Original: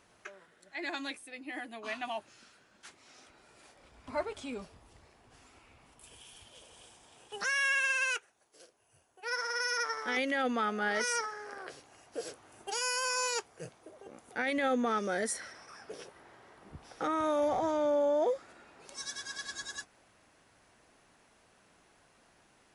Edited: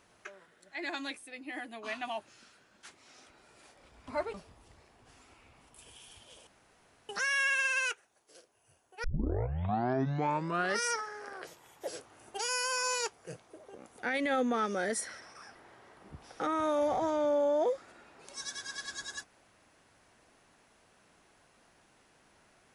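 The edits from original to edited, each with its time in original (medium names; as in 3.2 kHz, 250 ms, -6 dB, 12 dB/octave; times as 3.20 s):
4.34–4.59 s: delete
6.72–7.34 s: room tone
9.29 s: tape start 1.82 s
11.72–12.20 s: speed 119%
15.88–16.16 s: delete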